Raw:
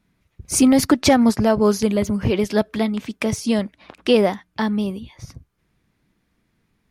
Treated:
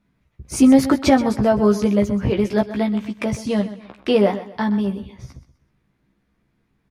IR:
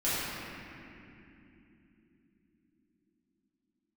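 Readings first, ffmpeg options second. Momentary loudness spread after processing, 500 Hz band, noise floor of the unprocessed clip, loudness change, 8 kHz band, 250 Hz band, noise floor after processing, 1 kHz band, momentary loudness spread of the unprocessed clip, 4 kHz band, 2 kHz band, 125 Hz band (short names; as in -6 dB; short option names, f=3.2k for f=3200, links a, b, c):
12 LU, 0.0 dB, -69 dBFS, +0.5 dB, -7.0 dB, +1.0 dB, -68 dBFS, +0.5 dB, 10 LU, -4.5 dB, -1.5 dB, +1.5 dB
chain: -filter_complex "[0:a]highshelf=f=3.2k:g=-9,asplit=2[a][b];[b]adelay=15,volume=-4dB[c];[a][c]amix=inputs=2:normalize=0,asplit=2[d][e];[e]aecho=0:1:127|254|381:0.2|0.0638|0.0204[f];[d][f]amix=inputs=2:normalize=0,volume=-1dB"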